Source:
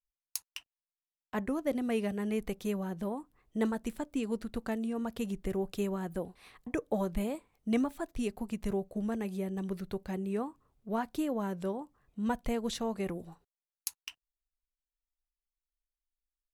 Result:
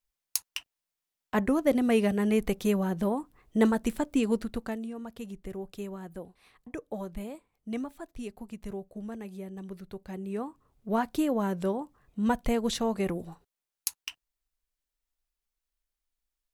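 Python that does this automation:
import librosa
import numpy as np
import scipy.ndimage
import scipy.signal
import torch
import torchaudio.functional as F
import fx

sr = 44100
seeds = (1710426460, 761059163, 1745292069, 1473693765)

y = fx.gain(x, sr, db=fx.line((4.31, 7.5), (4.99, -5.0), (9.91, -5.0), (10.91, 5.5)))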